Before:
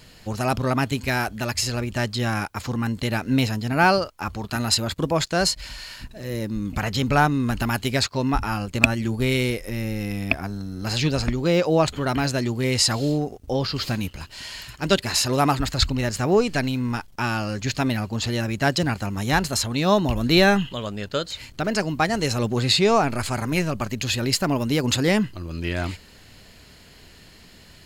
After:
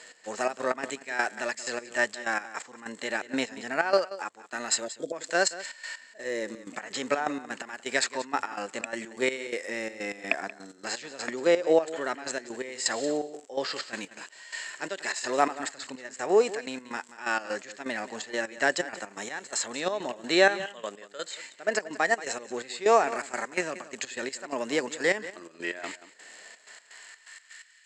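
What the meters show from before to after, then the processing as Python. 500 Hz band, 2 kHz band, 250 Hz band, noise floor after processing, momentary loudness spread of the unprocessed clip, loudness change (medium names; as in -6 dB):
-3.5 dB, -3.5 dB, -12.5 dB, -55 dBFS, 9 LU, -7.0 dB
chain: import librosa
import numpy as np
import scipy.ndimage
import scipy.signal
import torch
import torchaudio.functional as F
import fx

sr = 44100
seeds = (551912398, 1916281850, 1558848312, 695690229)

p1 = fx.peak_eq(x, sr, hz=1800.0, db=10.5, octaves=0.39)
p2 = fx.spec_erase(p1, sr, start_s=4.86, length_s=0.26, low_hz=740.0, high_hz=3200.0)
p3 = fx.level_steps(p2, sr, step_db=10)
p4 = p2 + (p3 * 10.0 ** (3.0 / 20.0))
p5 = scipy.signal.sosfilt(scipy.signal.butter(2, 180.0, 'highpass', fs=sr, output='sos'), p4)
p6 = fx.high_shelf(p5, sr, hz=6100.0, db=-12.0)
p7 = fx.dmg_crackle(p6, sr, seeds[0], per_s=91.0, level_db=-33.0)
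p8 = fx.hpss(p7, sr, part='harmonic', gain_db=7)
p9 = fx.filter_sweep_highpass(p8, sr, from_hz=470.0, to_hz=1800.0, start_s=26.25, end_s=27.78, q=1.2)
p10 = fx.step_gate(p9, sr, bpm=126, pattern='x.xx.x.x..xxx.', floor_db=-12.0, edge_ms=4.5)
p11 = fx.ladder_lowpass(p10, sr, hz=7900.0, resonance_pct=85)
p12 = p11 + fx.echo_single(p11, sr, ms=181, db=-16.0, dry=0)
p13 = fx.rider(p12, sr, range_db=3, speed_s=2.0)
y = p13 * 10.0 ** (-1.5 / 20.0)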